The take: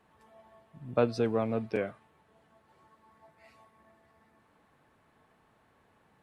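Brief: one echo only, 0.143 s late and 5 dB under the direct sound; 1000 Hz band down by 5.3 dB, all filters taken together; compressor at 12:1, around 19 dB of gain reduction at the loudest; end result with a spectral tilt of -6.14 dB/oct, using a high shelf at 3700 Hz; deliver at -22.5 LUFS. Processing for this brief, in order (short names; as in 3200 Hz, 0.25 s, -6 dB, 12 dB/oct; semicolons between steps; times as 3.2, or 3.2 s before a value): bell 1000 Hz -9 dB; high shelf 3700 Hz +8 dB; compressor 12:1, threshold -41 dBFS; echo 0.143 s -5 dB; gain +25.5 dB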